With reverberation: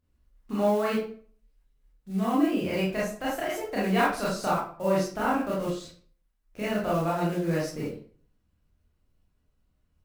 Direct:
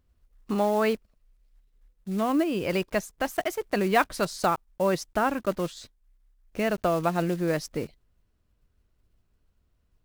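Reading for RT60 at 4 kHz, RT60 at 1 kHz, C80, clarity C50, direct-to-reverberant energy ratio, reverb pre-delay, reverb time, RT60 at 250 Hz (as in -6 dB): 0.35 s, 0.45 s, 8.0 dB, 1.5 dB, -7.5 dB, 24 ms, 0.45 s, 0.50 s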